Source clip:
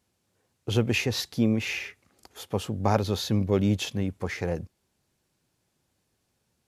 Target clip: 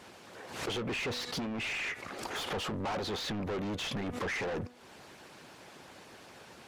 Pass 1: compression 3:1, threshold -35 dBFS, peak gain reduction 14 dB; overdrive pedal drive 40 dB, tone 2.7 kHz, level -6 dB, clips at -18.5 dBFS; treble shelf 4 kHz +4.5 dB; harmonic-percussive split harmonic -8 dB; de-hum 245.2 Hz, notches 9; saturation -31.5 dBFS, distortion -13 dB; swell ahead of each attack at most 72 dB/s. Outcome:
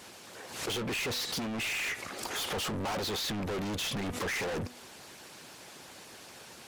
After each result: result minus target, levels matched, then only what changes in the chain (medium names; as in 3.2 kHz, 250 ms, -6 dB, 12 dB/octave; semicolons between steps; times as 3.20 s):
compression: peak gain reduction -7 dB; 8 kHz band +5.5 dB
change: compression 3:1, threshold -45.5 dBFS, peak gain reduction 21 dB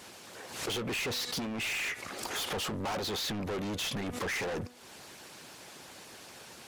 8 kHz band +5.5 dB
change: treble shelf 4 kHz -7 dB